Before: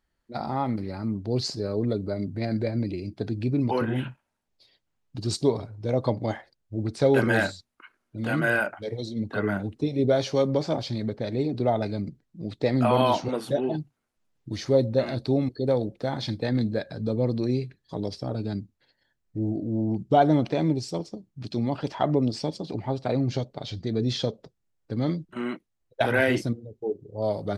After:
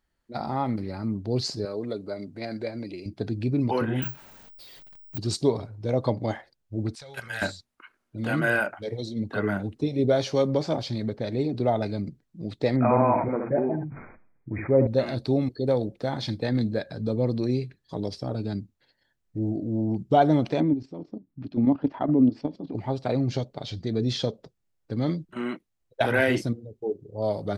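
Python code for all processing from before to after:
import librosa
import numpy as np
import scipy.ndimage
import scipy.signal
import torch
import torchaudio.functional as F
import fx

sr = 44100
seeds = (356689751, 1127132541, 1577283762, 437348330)

y = fx.chain(x, sr, fx.highpass(hz=480.0, slope=6),
    fx.notch(hz=1800.0, q=29.0), at=(1.65, 3.06))
y = fx.chain(y, sr, fx.zero_step(step_db=-46.0),
    fx.lowpass(hz=7700.0, slope=12),
    fx.resample_bad(factor=2, down='filtered', up='zero_stuff'), at=(4.02, 5.18))
y = fx.chain(y, sr, fx.tone_stack(knobs='10-0-10'),
    fx.level_steps(step_db=11), at=(6.95, 7.42))
y = fx.chain(y, sr, fx.brickwall_lowpass(high_hz=2500.0),
    fx.echo_single(ms=74, db=-10.5),
    fx.sustainer(db_per_s=61.0), at=(12.76, 14.87))
y = fx.chain(y, sr, fx.lowpass(hz=2000.0, slope=12),
    fx.level_steps(step_db=13),
    fx.peak_eq(hz=270.0, db=13.0, octaves=0.43), at=(20.6, 22.75))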